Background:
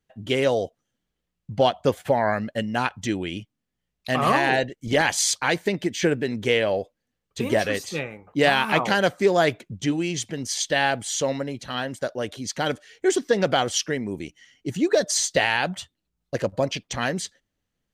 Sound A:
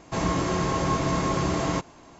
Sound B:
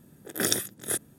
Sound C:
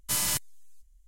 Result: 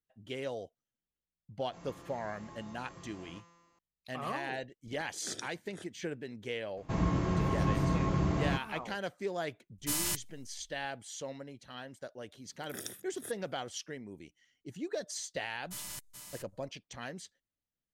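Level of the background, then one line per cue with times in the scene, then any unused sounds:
background −17 dB
0:01.60: mix in A −9.5 dB + tuned comb filter 170 Hz, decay 1.6 s, mix 90%
0:04.87: mix in B −17 dB + low-pass filter 7,100 Hz 24 dB per octave
0:06.77: mix in A −9.5 dB + bass and treble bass +9 dB, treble −8 dB
0:09.78: mix in C −5.5 dB
0:12.34: mix in B −17 dB + notch filter 4,500 Hz
0:15.62: mix in C −15.5 dB + single-tap delay 427 ms −6.5 dB

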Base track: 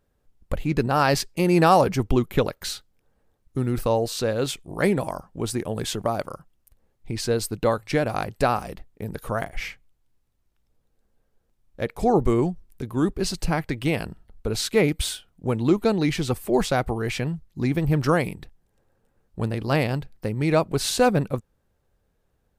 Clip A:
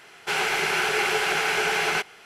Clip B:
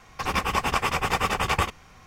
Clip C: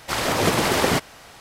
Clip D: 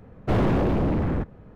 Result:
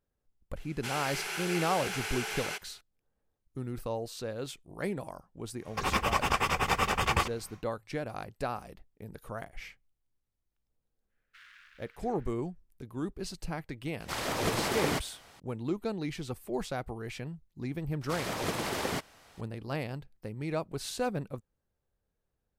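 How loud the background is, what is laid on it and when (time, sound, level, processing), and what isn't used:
base track −13 dB
0:00.56: mix in A −15 dB + high-shelf EQ 4,400 Hz +11.5 dB
0:05.58: mix in B −3.5 dB, fades 0.10 s
0:11.06: mix in D −16 dB, fades 0.10 s + elliptic high-pass filter 1,500 Hz, stop band 50 dB
0:14.00: mix in C −10.5 dB
0:18.01: mix in C −13 dB

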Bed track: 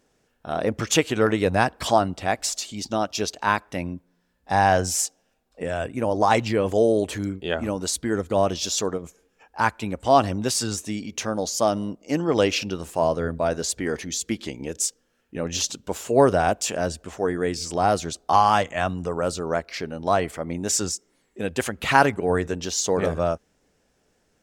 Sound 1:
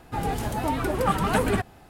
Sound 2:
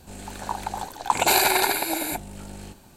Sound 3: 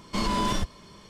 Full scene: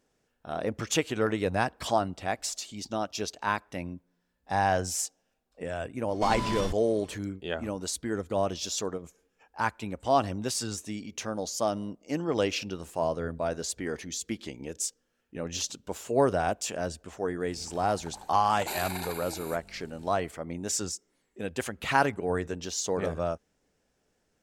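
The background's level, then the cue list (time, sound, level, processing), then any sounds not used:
bed track −7 dB
0:06.08: mix in 3 −6 dB
0:17.40: mix in 2 −16 dB
not used: 1

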